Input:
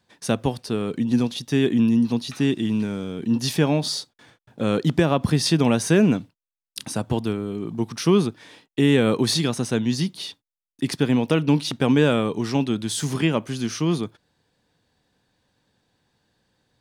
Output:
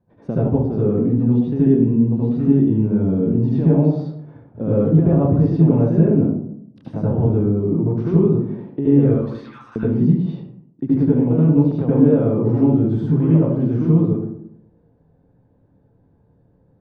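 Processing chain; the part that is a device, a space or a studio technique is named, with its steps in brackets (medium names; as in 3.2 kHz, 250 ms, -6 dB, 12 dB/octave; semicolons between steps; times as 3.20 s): 9.07–9.76 s: steep high-pass 1.1 kHz 36 dB/octave; television next door (compression 3:1, threshold -26 dBFS, peak gain reduction 10.5 dB; low-pass 550 Hz 12 dB/octave; reverberation RT60 0.70 s, pre-delay 69 ms, DRR -8 dB); trim +4 dB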